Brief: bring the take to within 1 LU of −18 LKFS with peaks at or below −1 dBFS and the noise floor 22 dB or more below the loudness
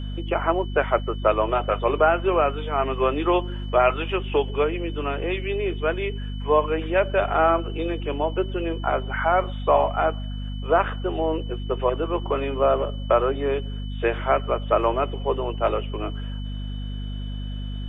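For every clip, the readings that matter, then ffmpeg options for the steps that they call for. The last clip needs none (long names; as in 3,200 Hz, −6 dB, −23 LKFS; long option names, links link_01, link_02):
mains hum 50 Hz; hum harmonics up to 250 Hz; level of the hum −28 dBFS; interfering tone 3,000 Hz; level of the tone −44 dBFS; integrated loudness −24.0 LKFS; sample peak −6.0 dBFS; target loudness −18.0 LKFS
→ -af "bandreject=frequency=50:width_type=h:width=4,bandreject=frequency=100:width_type=h:width=4,bandreject=frequency=150:width_type=h:width=4,bandreject=frequency=200:width_type=h:width=4,bandreject=frequency=250:width_type=h:width=4"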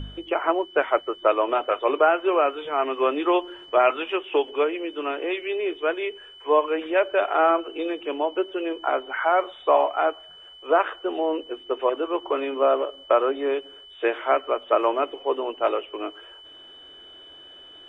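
mains hum none found; interfering tone 3,000 Hz; level of the tone −44 dBFS
→ -af "bandreject=frequency=3000:width=30"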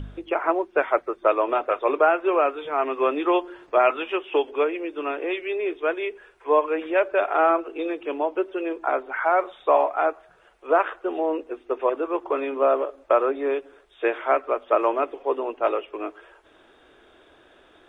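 interfering tone none found; integrated loudness −24.0 LKFS; sample peak −5.5 dBFS; target loudness −18.0 LKFS
→ -af "volume=6dB,alimiter=limit=-1dB:level=0:latency=1"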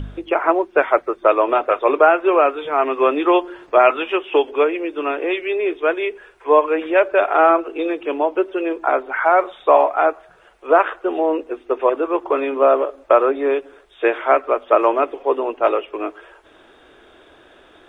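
integrated loudness −18.0 LKFS; sample peak −1.0 dBFS; background noise floor −50 dBFS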